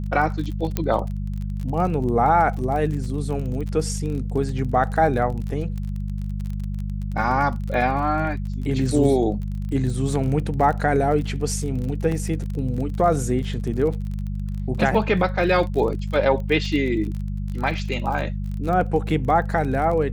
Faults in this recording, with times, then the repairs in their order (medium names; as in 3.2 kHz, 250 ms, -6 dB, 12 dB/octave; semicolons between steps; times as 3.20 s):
crackle 28 per s -29 dBFS
hum 50 Hz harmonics 4 -27 dBFS
0.77 s: pop -9 dBFS
12.12 s: dropout 2.5 ms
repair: de-click; de-hum 50 Hz, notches 4; interpolate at 12.12 s, 2.5 ms